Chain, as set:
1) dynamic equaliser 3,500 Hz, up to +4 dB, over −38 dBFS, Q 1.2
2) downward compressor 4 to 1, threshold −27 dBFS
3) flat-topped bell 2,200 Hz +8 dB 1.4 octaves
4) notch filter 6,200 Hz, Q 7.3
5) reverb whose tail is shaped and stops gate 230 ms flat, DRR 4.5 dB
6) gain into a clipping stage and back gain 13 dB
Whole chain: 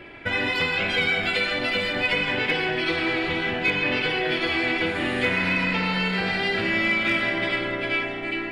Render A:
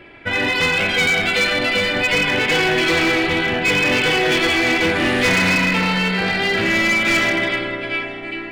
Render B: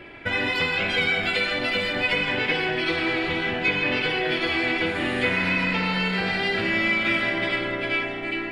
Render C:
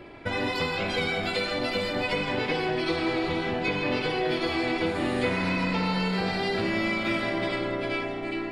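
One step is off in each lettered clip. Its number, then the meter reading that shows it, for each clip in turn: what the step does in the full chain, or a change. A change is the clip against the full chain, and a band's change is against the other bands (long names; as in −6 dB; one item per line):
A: 2, average gain reduction 6.5 dB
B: 6, change in crest factor +3.0 dB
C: 3, change in integrated loudness −4.5 LU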